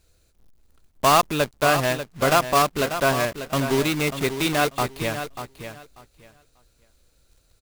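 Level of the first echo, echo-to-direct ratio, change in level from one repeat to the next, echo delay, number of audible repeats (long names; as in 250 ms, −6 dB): −10.0 dB, −10.0 dB, −14.5 dB, 591 ms, 2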